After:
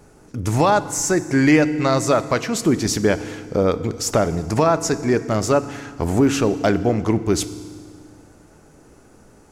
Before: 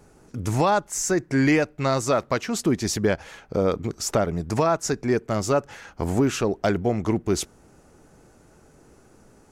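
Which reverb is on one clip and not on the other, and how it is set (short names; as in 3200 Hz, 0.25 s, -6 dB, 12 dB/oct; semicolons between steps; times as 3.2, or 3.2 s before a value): FDN reverb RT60 1.8 s, low-frequency decay 1.4×, high-frequency decay 0.95×, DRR 12.5 dB; gain +4 dB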